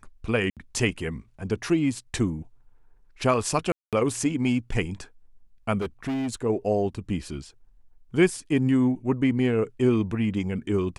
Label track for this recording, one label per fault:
0.500000	0.570000	gap 67 ms
3.720000	3.930000	gap 0.207 s
5.800000	6.340000	clipped -25 dBFS

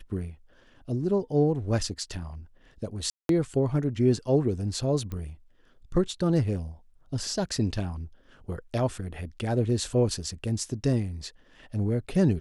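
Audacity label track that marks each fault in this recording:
3.100000	3.290000	gap 0.192 s
5.120000	5.120000	pop -23 dBFS

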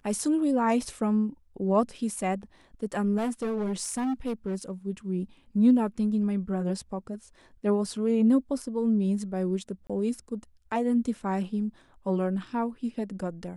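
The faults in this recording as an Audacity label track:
3.170000	4.710000	clipped -25.5 dBFS
9.870000	9.900000	gap 26 ms

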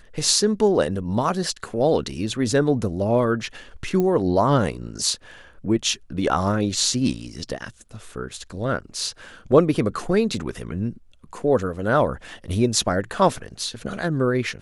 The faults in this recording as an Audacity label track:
4.000000	4.000000	pop -12 dBFS

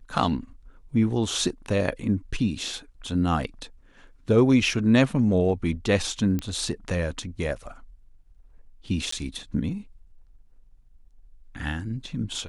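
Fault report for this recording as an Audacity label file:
6.390000	6.390000	pop -16 dBFS
9.110000	9.120000	gap 14 ms

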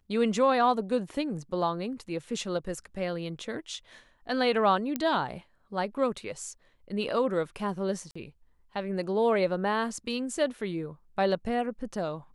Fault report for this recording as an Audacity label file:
4.960000	4.960000	pop -15 dBFS
8.110000	8.150000	gap 45 ms

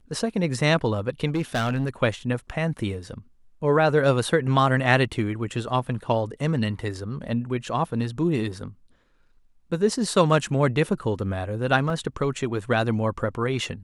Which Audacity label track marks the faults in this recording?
1.280000	1.890000	clipped -20 dBFS
11.900000	11.900000	gap 2.3 ms

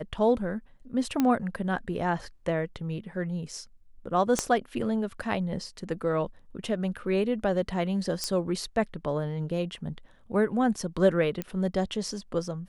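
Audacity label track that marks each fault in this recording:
1.200000	1.200000	pop -12 dBFS
4.390000	4.390000	pop -11 dBFS
8.240000	8.240000	pop -15 dBFS
11.420000	11.420000	pop -17 dBFS

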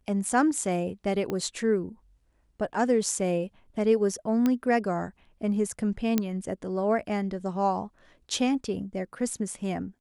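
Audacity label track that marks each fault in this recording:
1.300000	1.300000	pop -18 dBFS
4.460000	4.460000	pop -13 dBFS
6.180000	6.180000	pop -10 dBFS

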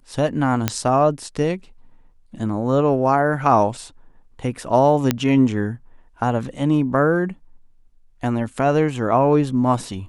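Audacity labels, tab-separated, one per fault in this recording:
0.680000	0.680000	pop -3 dBFS
5.110000	5.110000	pop -3 dBFS

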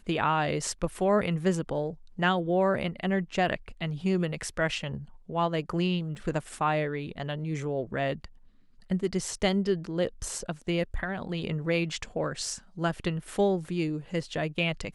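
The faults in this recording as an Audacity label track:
6.150000	6.150000	gap 2 ms

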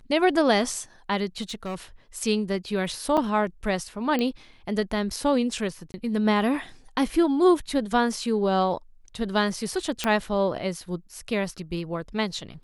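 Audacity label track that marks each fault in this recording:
1.410000	1.750000	clipped -28 dBFS
3.170000	3.180000	gap 5.6 ms
4.190000	4.190000	pop -14 dBFS
5.920000	5.940000	gap 20 ms
10.040000	10.040000	pop -9 dBFS

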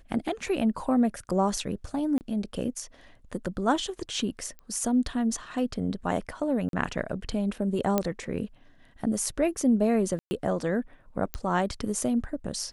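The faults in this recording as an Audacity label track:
2.180000	2.210000	gap 29 ms
4.590000	4.590000	pop -31 dBFS
6.690000	6.730000	gap 42 ms
7.980000	7.980000	pop -10 dBFS
10.190000	10.310000	gap 0.12 s
11.340000	11.340000	pop -13 dBFS

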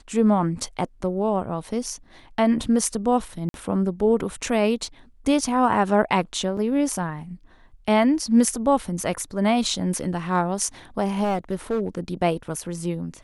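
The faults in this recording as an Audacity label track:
3.490000	3.540000	gap 52 ms
6.570000	6.570000	gap 3.9 ms
11.230000	12.000000	clipped -19 dBFS

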